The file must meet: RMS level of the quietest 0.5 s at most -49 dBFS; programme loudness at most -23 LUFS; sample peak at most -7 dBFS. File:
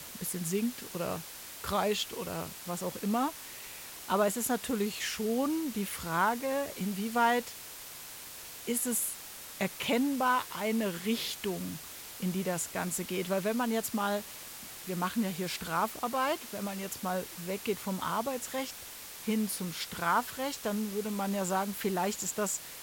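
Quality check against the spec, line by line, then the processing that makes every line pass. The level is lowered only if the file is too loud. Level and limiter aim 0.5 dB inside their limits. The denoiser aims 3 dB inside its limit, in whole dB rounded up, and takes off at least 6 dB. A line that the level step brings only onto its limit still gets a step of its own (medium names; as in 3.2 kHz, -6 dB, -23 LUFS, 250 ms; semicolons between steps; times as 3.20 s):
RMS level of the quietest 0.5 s -46 dBFS: fail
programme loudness -33.0 LUFS: pass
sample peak -14.0 dBFS: pass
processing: noise reduction 6 dB, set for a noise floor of -46 dBFS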